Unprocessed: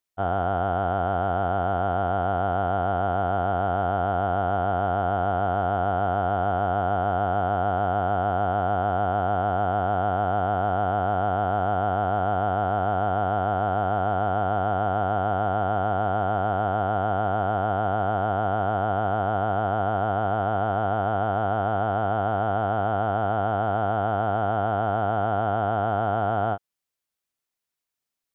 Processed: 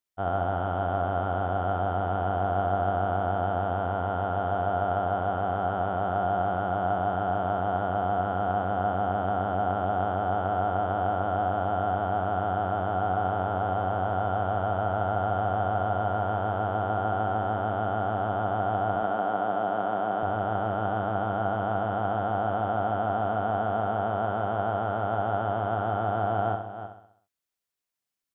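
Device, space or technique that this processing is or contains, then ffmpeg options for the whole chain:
ducked delay: -filter_complex "[0:a]asettb=1/sr,asplit=3[a][b][c];[a]atrim=end=18.964[d];[b]atrim=start=18.96:end=20.23,asetpts=PTS-STARTPTS,afade=t=in:d=0.004:c=qsin,afade=t=out:st=1.266:d=0.004:c=qsin,highpass=f=160:w=0.5412,highpass=f=160:w=1.3066[e];[c]atrim=start=20.226[f];[d][e]acrossfade=d=0.004:c1=hsin:c2=qsin[g];[g][f]acrossfade=d=0.004:c1=qsin:c2=hsin,asplit=3[h][i][j];[i]adelay=310,volume=-6dB[k];[j]apad=whole_len=1263893[l];[k][l]sidechaincompress=threshold=-35dB:ratio=8:attack=40:release=390[m];[h][m]amix=inputs=2:normalize=0,aecho=1:1:65|130|195|260|325|390:0.422|0.219|0.114|0.0593|0.0308|0.016,volume=-4dB"

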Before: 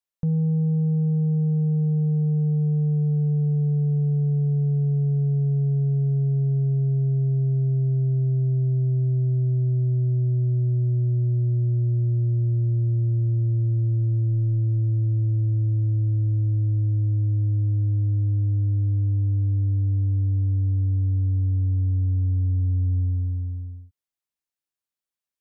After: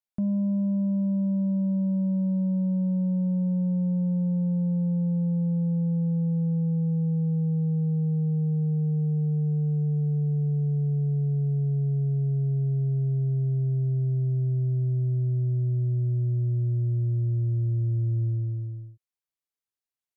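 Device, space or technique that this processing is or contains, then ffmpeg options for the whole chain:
nightcore: -af "asetrate=55566,aresample=44100,volume=-3.5dB"

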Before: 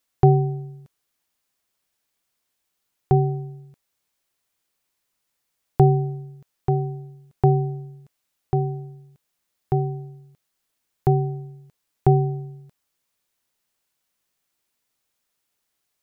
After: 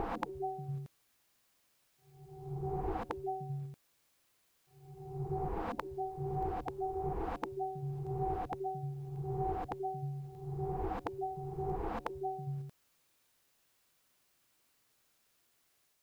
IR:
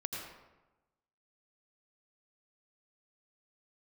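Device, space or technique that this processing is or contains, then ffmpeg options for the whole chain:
reverse reverb: -filter_complex "[0:a]areverse[a];[1:a]atrim=start_sample=2205[b];[a][b]afir=irnorm=-1:irlink=0,areverse,afftfilt=real='re*lt(hypot(re,im),0.158)':imag='im*lt(hypot(re,im),0.158)':win_size=1024:overlap=0.75,volume=3dB"

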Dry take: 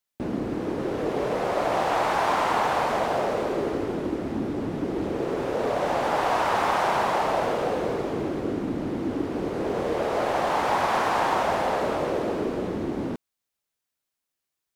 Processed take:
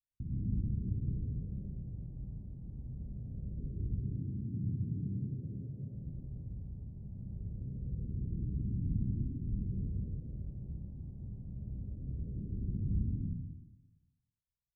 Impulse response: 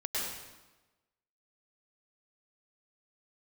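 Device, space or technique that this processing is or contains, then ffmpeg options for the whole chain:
club heard from the street: -filter_complex "[0:a]asettb=1/sr,asplit=3[a][b][c];[a]atrim=end=3.884[d];[b]atrim=start=3.88:end=5.94,asetpts=PTS-STARTPTS,afade=t=in:d=0.004:c=qsin,afade=t=out:st=2.056:d=0.004:c=qsin,highpass=f=99:w=0.5412,highpass=f=99:w=1.3066[e];[c]atrim=start=5.936[f];[d][e]acrossfade=d=0.004:c1=hsin:c2=qsin[g];[g][f]acrossfade=d=0.004:c1=qsin:c2=hsin,alimiter=limit=-20dB:level=0:latency=1:release=231,lowpass=f=130:w=0.5412,lowpass=f=130:w=1.3066[h];[1:a]atrim=start_sample=2205[i];[h][i]afir=irnorm=-1:irlink=0,volume=4.5dB"

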